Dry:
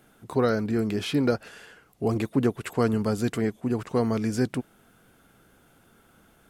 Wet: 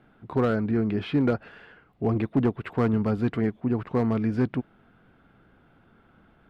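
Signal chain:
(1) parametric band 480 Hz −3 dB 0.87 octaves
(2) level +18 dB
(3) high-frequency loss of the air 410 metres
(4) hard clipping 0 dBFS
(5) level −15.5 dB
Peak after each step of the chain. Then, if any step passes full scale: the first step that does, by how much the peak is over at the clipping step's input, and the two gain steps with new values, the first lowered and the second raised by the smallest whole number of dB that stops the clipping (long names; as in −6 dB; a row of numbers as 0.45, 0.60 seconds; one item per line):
−11.5, +6.5, +5.5, 0.0, −15.5 dBFS
step 2, 5.5 dB
step 2 +12 dB, step 5 −9.5 dB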